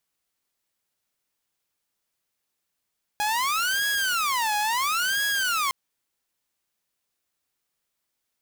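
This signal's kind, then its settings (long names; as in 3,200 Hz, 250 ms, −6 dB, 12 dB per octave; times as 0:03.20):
siren wail 833–1,660 Hz 0.73 per second saw −20 dBFS 2.51 s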